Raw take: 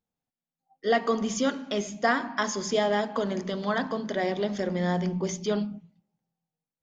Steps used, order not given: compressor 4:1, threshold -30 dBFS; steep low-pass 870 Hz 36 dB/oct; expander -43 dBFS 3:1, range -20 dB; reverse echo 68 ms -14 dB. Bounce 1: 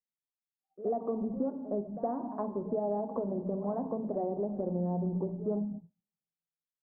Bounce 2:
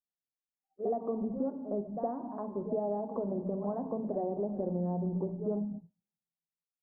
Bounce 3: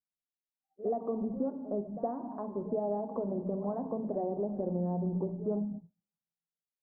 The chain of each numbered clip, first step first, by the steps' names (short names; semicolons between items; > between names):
steep low-pass > compressor > expander > reverse echo; reverse echo > compressor > steep low-pass > expander; compressor > reverse echo > expander > steep low-pass